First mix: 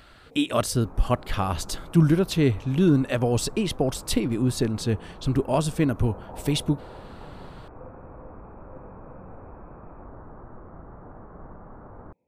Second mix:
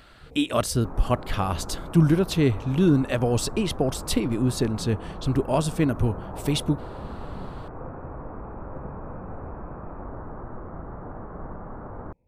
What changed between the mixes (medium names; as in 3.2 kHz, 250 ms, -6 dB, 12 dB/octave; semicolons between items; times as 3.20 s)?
first sound: remove high-pass 210 Hz 12 dB/octave; second sound +6.5 dB; reverb: on